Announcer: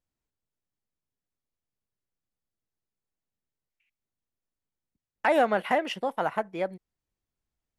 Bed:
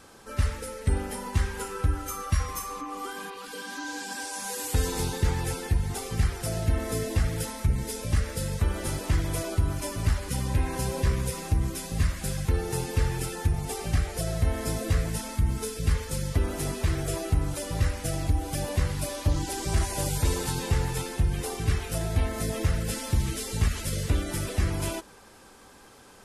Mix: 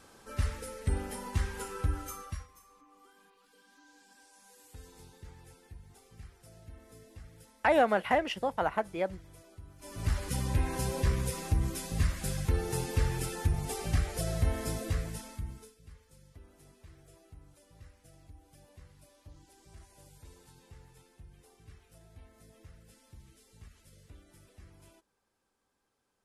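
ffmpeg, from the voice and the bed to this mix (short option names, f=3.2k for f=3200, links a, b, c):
-filter_complex "[0:a]adelay=2400,volume=-2dB[a];[1:a]volume=16dB,afade=t=out:st=1.99:d=0.49:silence=0.105925,afade=t=in:st=9.78:d=0.41:silence=0.0841395,afade=t=out:st=14.45:d=1.31:silence=0.0562341[b];[a][b]amix=inputs=2:normalize=0"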